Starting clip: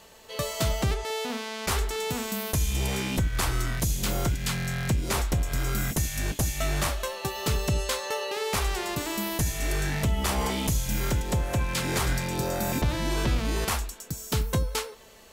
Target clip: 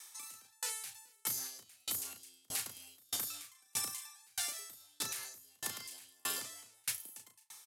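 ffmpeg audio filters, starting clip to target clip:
ffmpeg -i in.wav -filter_complex "[0:a]aderivative,asetrate=88200,aresample=44100,lowpass=frequency=12000:width=0.5412,lowpass=frequency=12000:width=1.3066,lowshelf=frequency=360:gain=3,bandreject=frequency=84.03:width_type=h:width=4,bandreject=frequency=168.06:width_type=h:width=4,bandreject=frequency=252.09:width_type=h:width=4,asplit=2[link_01][link_02];[link_02]aecho=0:1:34|69:0.596|0.126[link_03];[link_01][link_03]amix=inputs=2:normalize=0,alimiter=level_in=7dB:limit=-24dB:level=0:latency=1:release=99,volume=-7dB,aeval=exprs='val(0)*pow(10,-38*if(lt(mod(1.6*n/s,1),2*abs(1.6)/1000),1-mod(1.6*n/s,1)/(2*abs(1.6)/1000),(mod(1.6*n/s,1)-2*abs(1.6)/1000)/(1-2*abs(1.6)/1000))/20)':channel_layout=same,volume=11.5dB" out.wav

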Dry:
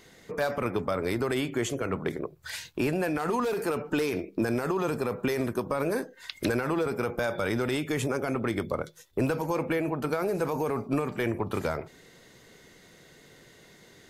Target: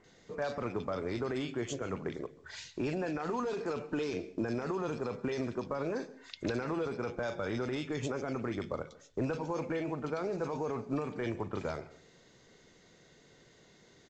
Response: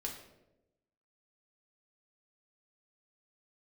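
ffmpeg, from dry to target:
-filter_complex "[0:a]acrossover=split=2100[link_01][link_02];[link_02]adelay=40[link_03];[link_01][link_03]amix=inputs=2:normalize=0,asplit=2[link_04][link_05];[1:a]atrim=start_sample=2205,atrim=end_sample=6615,adelay=135[link_06];[link_05][link_06]afir=irnorm=-1:irlink=0,volume=-18.5dB[link_07];[link_04][link_07]amix=inputs=2:normalize=0,volume=-6.5dB" -ar 16000 -c:a pcm_mulaw

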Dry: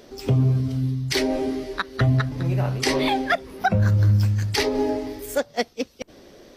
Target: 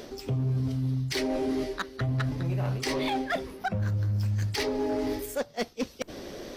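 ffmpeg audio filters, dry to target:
ffmpeg -i in.wav -af "areverse,acompressor=threshold=-33dB:ratio=8,areverse,asoftclip=type=hard:threshold=-30dB,volume=7dB" out.wav

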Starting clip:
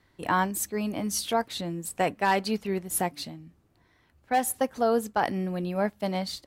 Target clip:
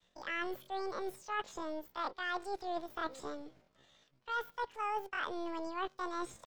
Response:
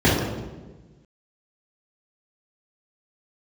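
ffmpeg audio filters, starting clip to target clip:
-filter_complex "[0:a]agate=range=-33dB:threshold=-59dB:ratio=3:detection=peak,highshelf=frequency=4200:width_type=q:width=1.5:gain=-9,areverse,acompressor=threshold=-38dB:ratio=6,areverse,asetrate=80880,aresample=44100,atempo=0.545254,acrossover=split=2900[link_01][link_02];[link_02]acompressor=threshold=-58dB:ratio=4:attack=1:release=60[link_03];[link_01][link_03]amix=inputs=2:normalize=0,acrossover=split=470[link_04][link_05];[link_04]aeval=exprs='max(val(0),0)':channel_layout=same[link_06];[link_06][link_05]amix=inputs=2:normalize=0,volume=3.5dB"

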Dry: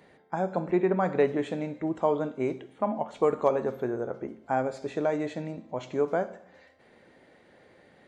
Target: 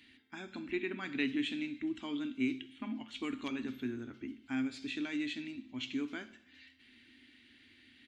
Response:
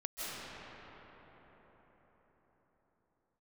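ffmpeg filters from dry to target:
-af "firequalizer=gain_entry='entry(110,0);entry(170,-21);entry(250,8);entry(490,-27);entry(1500,-3);entry(2800,14);entry(6400,1)':delay=0.05:min_phase=1,volume=-4dB"

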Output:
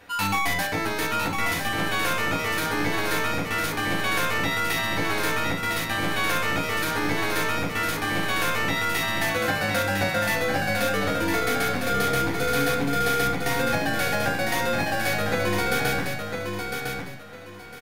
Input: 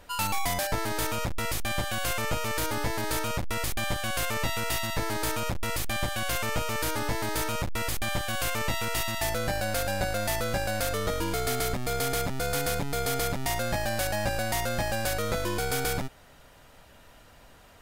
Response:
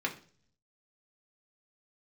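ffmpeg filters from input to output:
-filter_complex "[0:a]aecho=1:1:1005|2010|3015:0.531|0.133|0.0332[link_01];[1:a]atrim=start_sample=2205,atrim=end_sample=6615[link_02];[link_01][link_02]afir=irnorm=-1:irlink=0"

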